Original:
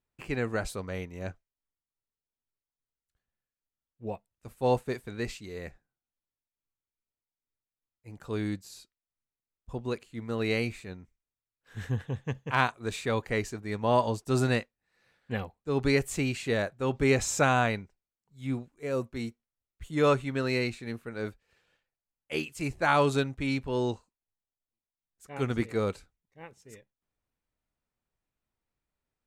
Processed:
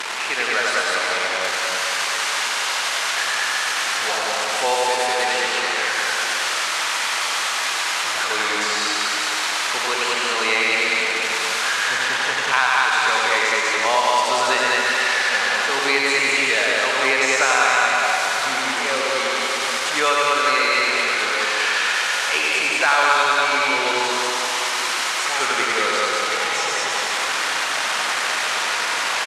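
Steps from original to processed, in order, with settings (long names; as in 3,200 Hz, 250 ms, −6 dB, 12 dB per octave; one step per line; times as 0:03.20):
linear delta modulator 64 kbit/s, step −31 dBFS
high-pass filter 1,000 Hz 12 dB per octave
on a send: loudspeakers that aren't time-aligned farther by 32 metres −2 dB, 68 metres −1 dB
on the sum: automatic gain control gain up to 8 dB
high-frequency loss of the air 84 metres
dense smooth reverb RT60 2.6 s, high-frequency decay 0.8×, pre-delay 120 ms, DRR 1 dB
multiband upward and downward compressor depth 70%
level +5 dB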